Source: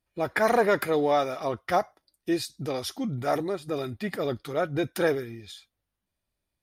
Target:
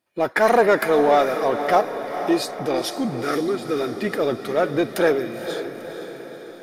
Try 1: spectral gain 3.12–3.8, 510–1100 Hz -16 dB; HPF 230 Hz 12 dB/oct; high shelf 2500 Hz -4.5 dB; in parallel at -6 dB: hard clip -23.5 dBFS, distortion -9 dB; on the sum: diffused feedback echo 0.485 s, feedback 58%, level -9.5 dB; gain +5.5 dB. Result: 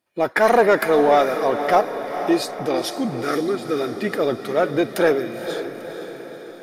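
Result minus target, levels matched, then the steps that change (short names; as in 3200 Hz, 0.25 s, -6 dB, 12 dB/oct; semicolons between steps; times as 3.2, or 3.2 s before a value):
hard clip: distortion -5 dB
change: hard clip -30 dBFS, distortion -4 dB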